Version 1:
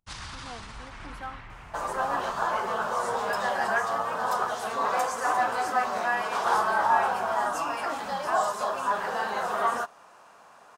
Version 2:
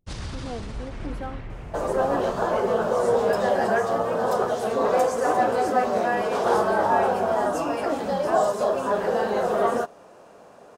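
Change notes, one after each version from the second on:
master: add resonant low shelf 710 Hz +11 dB, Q 1.5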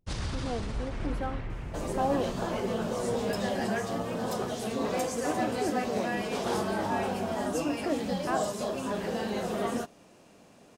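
second sound: add band shelf 810 Hz -11 dB 2.3 oct

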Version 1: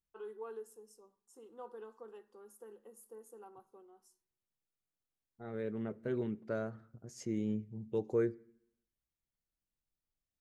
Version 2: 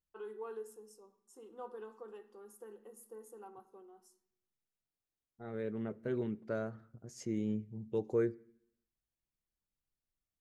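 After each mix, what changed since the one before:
first voice: send +11.5 dB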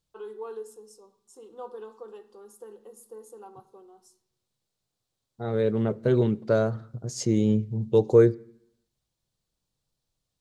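second voice +8.5 dB; master: add ten-band EQ 125 Hz +10 dB, 500 Hz +6 dB, 1000 Hz +5 dB, 2000 Hz -3 dB, 4000 Hz +11 dB, 8000 Hz +6 dB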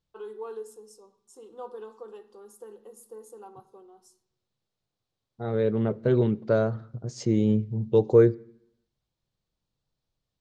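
second voice: add air absorption 110 m

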